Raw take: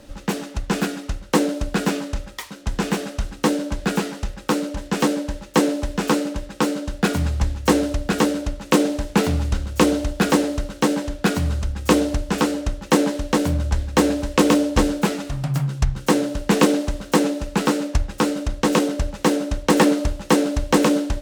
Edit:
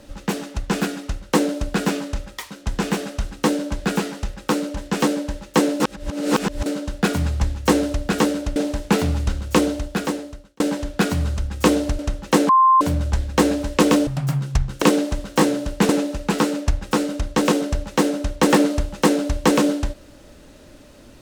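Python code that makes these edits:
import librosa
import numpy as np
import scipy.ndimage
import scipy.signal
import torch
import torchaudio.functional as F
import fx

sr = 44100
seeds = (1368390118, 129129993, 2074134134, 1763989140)

y = fx.edit(x, sr, fx.reverse_span(start_s=5.8, length_s=0.86),
    fx.cut(start_s=8.56, length_s=0.25),
    fx.fade_out_span(start_s=9.74, length_s=1.11),
    fx.cut(start_s=12.24, length_s=0.34),
    fx.bleep(start_s=13.08, length_s=0.32, hz=1050.0, db=-10.0),
    fx.cut(start_s=14.66, length_s=0.68),
    fx.move(start_s=16.09, length_s=0.49, to_s=17.16), tone=tone)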